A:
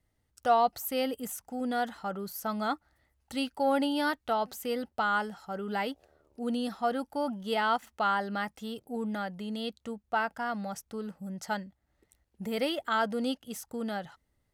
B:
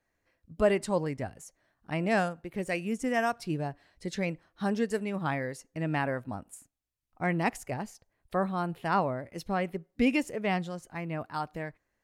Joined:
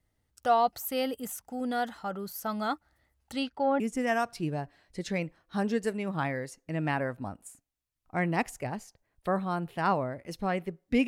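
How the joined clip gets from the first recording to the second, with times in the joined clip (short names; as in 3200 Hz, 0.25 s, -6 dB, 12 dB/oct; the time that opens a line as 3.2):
A
3.32–3.8 LPF 9500 Hz -> 1500 Hz
3.8 switch to B from 2.87 s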